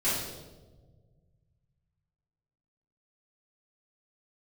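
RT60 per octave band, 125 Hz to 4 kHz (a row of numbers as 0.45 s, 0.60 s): 3.1 s, 2.0 s, 1.7 s, 1.1 s, 0.80 s, 0.85 s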